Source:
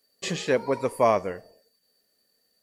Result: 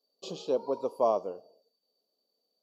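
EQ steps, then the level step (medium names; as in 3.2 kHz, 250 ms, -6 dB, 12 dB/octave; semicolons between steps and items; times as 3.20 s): boxcar filter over 5 samples; high-pass 300 Hz 12 dB/octave; Butterworth band-stop 1.9 kHz, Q 0.72; -4.0 dB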